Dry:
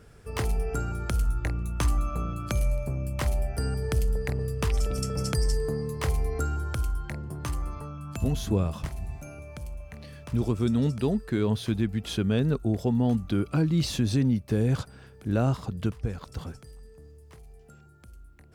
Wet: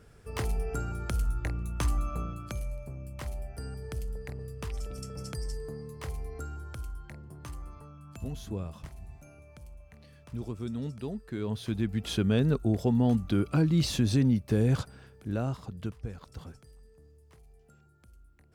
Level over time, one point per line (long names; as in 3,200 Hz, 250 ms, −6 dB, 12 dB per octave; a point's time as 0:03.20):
0:02.19 −3.5 dB
0:02.65 −10.5 dB
0:11.22 −10.5 dB
0:12.05 −0.5 dB
0:14.80 −0.5 dB
0:15.49 −7.5 dB